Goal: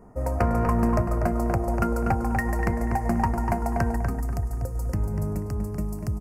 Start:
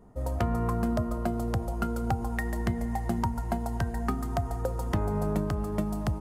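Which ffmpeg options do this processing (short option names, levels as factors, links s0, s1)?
-filter_complex "[0:a]asetnsamples=n=441:p=0,asendcmd='3.96 equalizer g -13.5',equalizer=f=940:w=0.36:g=3.5,aeval=exprs='clip(val(0),-1,0.0668)':c=same,asuperstop=centerf=3500:order=4:qfactor=1.6,asplit=2[s0][s1];[s1]adelay=243,lowpass=f=2900:p=1,volume=0.562,asplit=2[s2][s3];[s3]adelay=243,lowpass=f=2900:p=1,volume=0.34,asplit=2[s4][s5];[s5]adelay=243,lowpass=f=2900:p=1,volume=0.34,asplit=2[s6][s7];[s7]adelay=243,lowpass=f=2900:p=1,volume=0.34[s8];[s0][s2][s4][s6][s8]amix=inputs=5:normalize=0,volume=1.5"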